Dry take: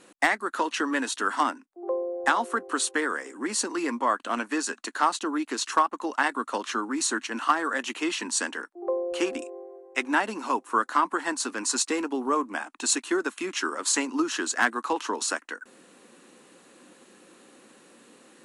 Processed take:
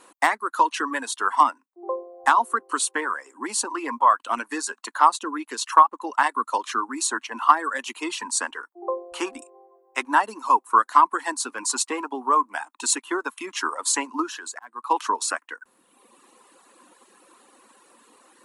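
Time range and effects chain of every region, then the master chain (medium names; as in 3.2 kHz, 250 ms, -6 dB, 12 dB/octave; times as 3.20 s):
14.27–14.91 s: slow attack 642 ms + compression, threshold -31 dBFS
whole clip: treble shelf 6.2 kHz +9.5 dB; reverb removal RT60 1.3 s; fifteen-band graphic EQ 160 Hz -11 dB, 1 kHz +12 dB, 6.3 kHz -3 dB; trim -1.5 dB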